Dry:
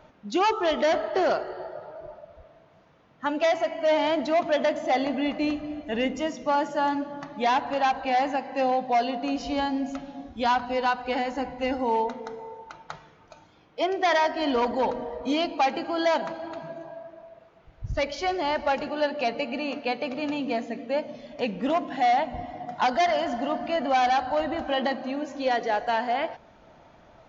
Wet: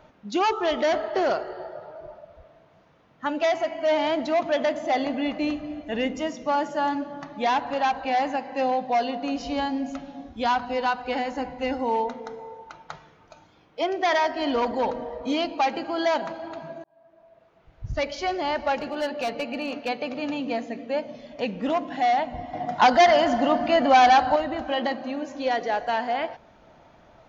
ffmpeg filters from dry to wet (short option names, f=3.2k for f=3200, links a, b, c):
-filter_complex "[0:a]asettb=1/sr,asplit=3[a][b][c];[a]atrim=end=18.804[d];[b]atrim=start=18.8:end=19.89,asetpts=PTS-STARTPTS,afade=t=in:d=0.004:c=qsin,afade=t=out:st=1.086:d=0.004:c=qsin,asoftclip=type=hard:threshold=-22.5dB[e];[c]atrim=start=19.886[f];[d][e]acrossfade=d=0.004:c1=hsin:c2=qsin[g];[g][f]acrossfade=d=0.004:c1=qsin:c2=hsin,asplit=4[h][i][j][k];[h]atrim=end=16.84,asetpts=PTS-STARTPTS,afade=t=out:st=16.836:d=0.004:c=hsin[l];[i]atrim=start=16.84:end=22.532,asetpts=PTS-STARTPTS,afade=t=in:d=1.04[m];[j]atrim=start=22.528:end=24.362,asetpts=PTS-STARTPTS,volume=6.5dB[n];[k]atrim=start=24.358[o];[l][m]concat=n=2:v=0:a=1[p];[p][n]acrossfade=d=0.004:c1=hsin:c2=hsin[q];[q][o]acrossfade=d=0.004:c1=hsin:c2=hsin"